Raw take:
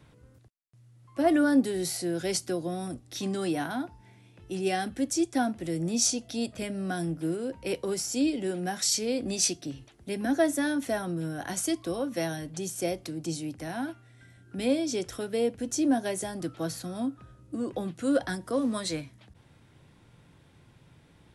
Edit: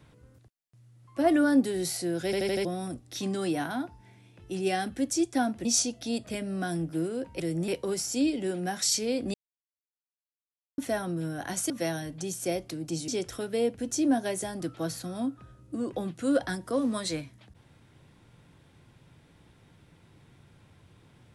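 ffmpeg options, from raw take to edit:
-filter_complex "[0:a]asplit=13[s0][s1][s2][s3][s4][s5][s6][s7][s8][s9][s10][s11][s12];[s0]atrim=end=2.332[s13];[s1]atrim=start=2.248:end=2.332[s14];[s2]atrim=start=2.248:end=2.332[s15];[s3]atrim=start=2.248:end=2.332[s16];[s4]atrim=start=2.248:end=2.332[s17];[s5]atrim=start=2.648:end=5.652[s18];[s6]atrim=start=5.928:end=7.682[s19];[s7]atrim=start=5.648:end=5.932[s20];[s8]atrim=start=7.678:end=9.34,asetpts=PTS-STARTPTS,afade=t=out:st=1.658:d=0.004:c=hsin[s21];[s9]atrim=start=9.34:end=10.78,asetpts=PTS-STARTPTS,volume=0[s22];[s10]atrim=start=10.78:end=11.702,asetpts=PTS-STARTPTS,afade=t=in:d=0.004:c=hsin[s23];[s11]atrim=start=12.058:end=13.442[s24];[s12]atrim=start=14.878[s25];[s13][s14]acrossfade=d=0.004:c1=hsin:c2=hsin[s26];[s26][s15]acrossfade=d=0.004:c1=hsin:c2=hsin[s27];[s27][s16]acrossfade=d=0.004:c1=hsin:c2=hsin[s28];[s28][s17]acrossfade=d=0.004:c1=hsin:c2=hsin[s29];[s29][s18]acrossfade=d=0.004:c1=hsin:c2=hsin[s30];[s30][s19]acrossfade=d=0.004:c1=hsin:c2=hsin[s31];[s31][s20]acrossfade=d=0.004:c1=hsin:c2=hsin[s32];[s21][s22][s23]concat=n=3:v=0:a=1[s33];[s32][s33]acrossfade=d=0.004:c1=hsin:c2=hsin[s34];[s34][s24]acrossfade=d=0.004:c1=hsin:c2=hsin[s35];[s35][s25]acrossfade=d=0.004:c1=hsin:c2=hsin"

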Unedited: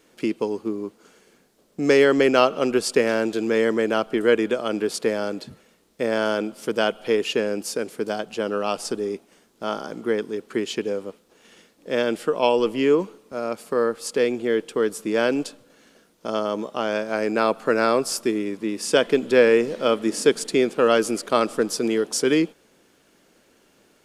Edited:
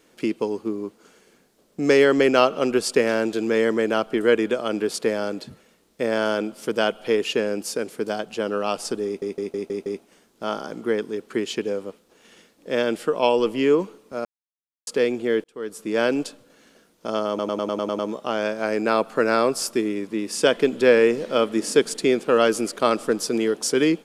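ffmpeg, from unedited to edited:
-filter_complex "[0:a]asplit=16[s0][s1][s2][s3][s4][s5][s6][s7][s8][s9][s10][s11][s12][s13][s14][s15];[s0]atrim=end=9.222[s16];[s1]atrim=start=9.058:end=9.222[s17];[s2]atrim=start=9.058:end=9.222[s18];[s3]atrim=start=9.058:end=9.222[s19];[s4]atrim=start=9.058:end=9.222[s20];[s5]atrim=start=9.058:end=13.45,asetpts=PTS-STARTPTS,afade=t=out:st=4.388:d=0.004:c=hsin[s21];[s6]atrim=start=13.45:end=14.07,asetpts=PTS-STARTPTS,volume=0[s22];[s7]atrim=start=14.07:end=14.64,asetpts=PTS-STARTPTS,afade=t=in:d=0.004:c=hsin,afade=t=out:st=0.566:d=0.004:c=hsin[s23];[s8]atrim=start=14.64:end=16.592,asetpts=PTS-STARTPTS,afade=t=in:d=0.57[s24];[s9]atrim=start=16.488:end=16.592[s25];[s10]atrim=start=16.488:end=16.592[s26];[s11]atrim=start=16.488:end=16.592[s27];[s12]atrim=start=16.488:end=16.592[s28];[s13]atrim=start=16.488:end=16.592[s29];[s14]atrim=start=16.488:end=16.592[s30];[s15]atrim=start=16.488[s31];[s16][s17]acrossfade=d=0.004:c1=hsin:c2=hsin[s32];[s32][s18]acrossfade=d=0.004:c1=hsin:c2=hsin[s33];[s33][s19]acrossfade=d=0.004:c1=hsin:c2=hsin[s34];[s34][s20]acrossfade=d=0.004:c1=hsin:c2=hsin[s35];[s21][s22][s23][s24]concat=n=4:v=0:a=1[s36];[s35][s36]acrossfade=d=0.004:c1=hsin:c2=hsin[s37];[s37][s25]acrossfade=d=0.004:c1=hsin:c2=hsin[s38];[s38][s26]acrossfade=d=0.004:c1=hsin:c2=hsin[s39];[s39][s27]acrossfade=d=0.004:c1=hsin:c2=hsin[s40];[s40][s28]acrossfade=d=0.004:c1=hsin:c2=hsin[s41];[s41][s29]acrossfade=d=0.004:c1=hsin:c2=hsin[s42];[s42][s30]acrossfade=d=0.004:c1=hsin:c2=hsin[s43];[s43][s31]acrossfade=d=0.004:c1=hsin:c2=hsin"

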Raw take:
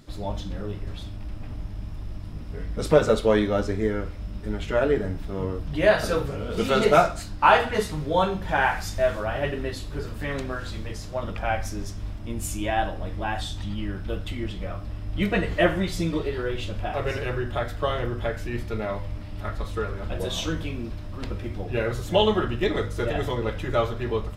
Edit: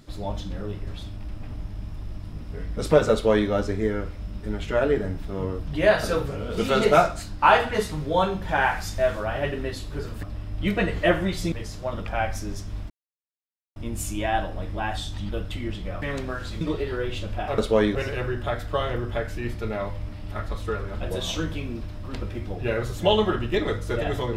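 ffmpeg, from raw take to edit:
-filter_complex "[0:a]asplit=9[s0][s1][s2][s3][s4][s5][s6][s7][s8];[s0]atrim=end=10.232[s9];[s1]atrim=start=14.778:end=16.072[s10];[s2]atrim=start=10.818:end=12.2,asetpts=PTS-STARTPTS,afade=t=out:st=1.378:d=0.004:c=hsin,apad=pad_dur=0.86[s11];[s3]atrim=start=12.2:end=13.732,asetpts=PTS-STARTPTS,afade=t=in:d=0.004:c=hsin[s12];[s4]atrim=start=14.048:end=14.782[s13];[s5]atrim=start=10.228:end=10.822[s14];[s6]atrim=start=16.068:end=17.042[s15];[s7]atrim=start=3.118:end=3.492[s16];[s8]atrim=start=17.038[s17];[s9][s10]acrossfade=d=0.004:c1=hsin:c2=hsin[s18];[s11][s12]concat=n=2:v=0:a=1[s19];[s18][s19]acrossfade=d=0.004:c1=hsin:c2=hsin[s20];[s20][s13]acrossfade=d=0.004:c1=hsin:c2=hsin[s21];[s21][s14]acrossfade=d=0.004:c1=hsin:c2=hsin[s22];[s22][s15]acrossfade=d=0.004:c1=hsin:c2=hsin[s23];[s23][s16]acrossfade=d=0.004:c1=hsin:c2=hsin[s24];[s24][s17]acrossfade=d=0.004:c1=hsin:c2=hsin"

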